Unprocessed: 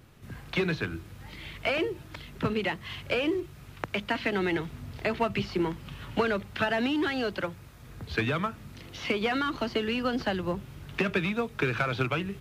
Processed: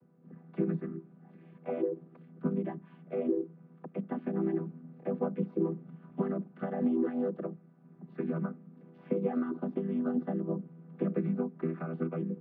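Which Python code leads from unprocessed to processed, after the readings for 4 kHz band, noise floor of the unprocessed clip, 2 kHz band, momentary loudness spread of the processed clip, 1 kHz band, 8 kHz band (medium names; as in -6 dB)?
under -35 dB, -49 dBFS, -22.5 dB, 14 LU, -12.0 dB, under -25 dB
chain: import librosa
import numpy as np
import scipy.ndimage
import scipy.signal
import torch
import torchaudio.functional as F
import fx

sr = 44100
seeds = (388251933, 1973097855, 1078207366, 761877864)

y = fx.chord_vocoder(x, sr, chord='minor triad', root=52)
y = scipy.signal.sosfilt(scipy.signal.butter(2, 1100.0, 'lowpass', fs=sr, output='sos'), y)
y = fx.dynamic_eq(y, sr, hz=340.0, q=1.0, threshold_db=-41.0, ratio=4.0, max_db=5)
y = y * librosa.db_to_amplitude(-5.5)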